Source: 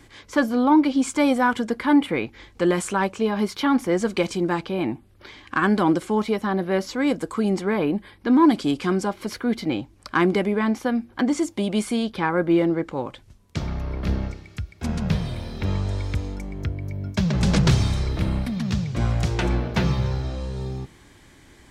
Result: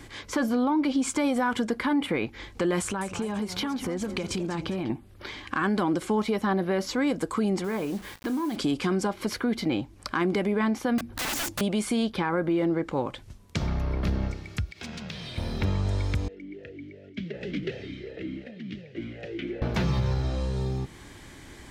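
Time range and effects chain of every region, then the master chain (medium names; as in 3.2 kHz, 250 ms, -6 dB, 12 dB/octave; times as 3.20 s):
2.81–4.90 s: peaking EQ 76 Hz +11 dB 1.8 oct + compression 10:1, threshold -28 dBFS + modulated delay 203 ms, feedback 41%, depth 198 cents, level -12 dB
7.64–8.56 s: compression, threshold -28 dBFS + word length cut 8-bit, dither none + doubling 36 ms -14 dB
10.98–11.61 s: tone controls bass +9 dB, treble +2 dB + compression 2:1, threshold -21 dBFS + integer overflow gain 27 dB
14.71–15.38 s: median filter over 3 samples + frequency weighting D + compression 4:1, threshold -42 dBFS
16.28–19.62 s: block-companded coder 5-bit + distance through air 83 m + talking filter e-i 2.7 Hz
whole clip: peak limiter -16.5 dBFS; compression 1.5:1, threshold -36 dBFS; trim +4.5 dB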